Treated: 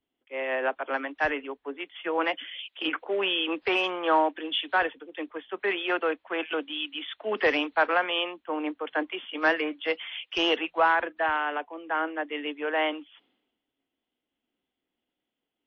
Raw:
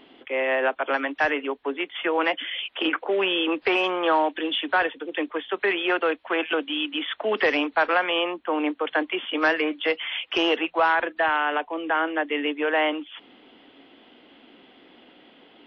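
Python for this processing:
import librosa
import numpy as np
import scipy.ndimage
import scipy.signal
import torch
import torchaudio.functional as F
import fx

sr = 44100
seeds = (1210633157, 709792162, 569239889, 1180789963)

y = fx.wow_flutter(x, sr, seeds[0], rate_hz=2.1, depth_cents=20.0)
y = fx.band_widen(y, sr, depth_pct=100)
y = y * 10.0 ** (-4.5 / 20.0)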